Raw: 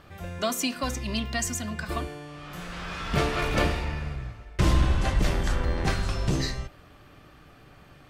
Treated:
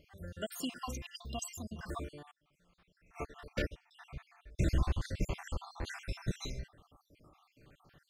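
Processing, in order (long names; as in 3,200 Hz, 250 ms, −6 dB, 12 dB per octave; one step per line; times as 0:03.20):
time-frequency cells dropped at random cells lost 60%
0:02.31–0:03.91: expander for the loud parts 2.5 to 1, over −37 dBFS
level −8 dB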